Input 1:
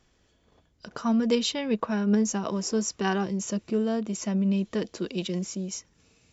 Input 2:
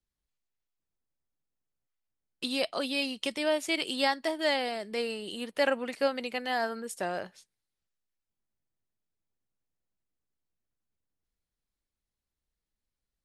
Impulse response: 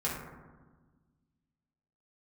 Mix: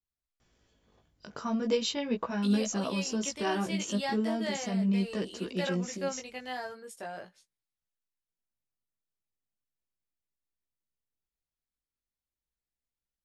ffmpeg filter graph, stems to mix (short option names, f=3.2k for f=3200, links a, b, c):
-filter_complex "[0:a]adelay=400,volume=-1dB[a];[1:a]volume=-5dB[b];[a][b]amix=inputs=2:normalize=0,flanger=delay=15.5:depth=4.2:speed=0.38"